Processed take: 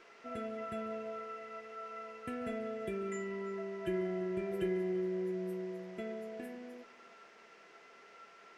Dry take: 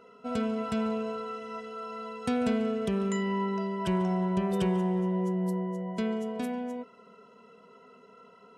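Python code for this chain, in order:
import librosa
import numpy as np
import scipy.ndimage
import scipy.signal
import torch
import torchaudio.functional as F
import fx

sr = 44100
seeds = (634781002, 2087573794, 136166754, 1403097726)

p1 = fx.peak_eq(x, sr, hz=370.0, db=4.0, octaves=1.5)
p2 = fx.fixed_phaser(p1, sr, hz=2200.0, stages=4)
p3 = fx.comb_fb(p2, sr, f0_hz=340.0, decay_s=0.16, harmonics='all', damping=0.0, mix_pct=100)
p4 = p3 + fx.echo_single(p3, sr, ms=339, db=-22.5, dry=0)
p5 = fx.dmg_noise_band(p4, sr, seeds[0], low_hz=350.0, high_hz=5500.0, level_db=-69.0)
p6 = fx.graphic_eq(p5, sr, hz=(125, 250, 500, 2000, 4000, 8000), db=(6, -4, 5, 5, -10, -5))
y = F.gain(torch.from_numpy(p6), 8.0).numpy()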